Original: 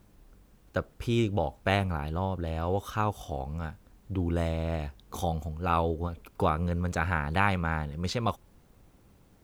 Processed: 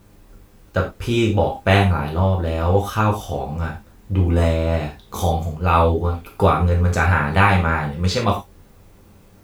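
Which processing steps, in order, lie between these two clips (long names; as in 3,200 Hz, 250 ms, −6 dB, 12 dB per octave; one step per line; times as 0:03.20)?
reverb whose tail is shaped and stops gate 130 ms falling, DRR −2 dB
level +7 dB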